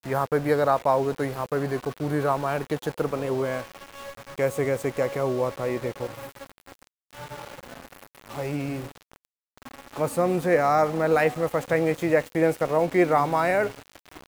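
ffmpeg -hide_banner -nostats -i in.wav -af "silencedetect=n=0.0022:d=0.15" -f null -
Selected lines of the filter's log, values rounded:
silence_start: 6.87
silence_end: 7.11 | silence_duration: 0.23
silence_start: 9.25
silence_end: 9.57 | silence_duration: 0.33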